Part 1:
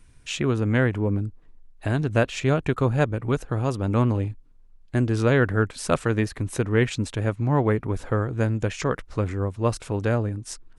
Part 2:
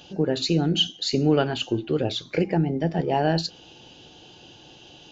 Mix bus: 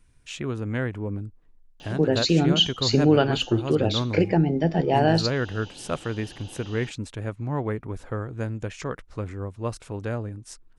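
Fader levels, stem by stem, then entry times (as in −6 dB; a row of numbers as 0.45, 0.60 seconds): −6.5, +2.0 decibels; 0.00, 1.80 seconds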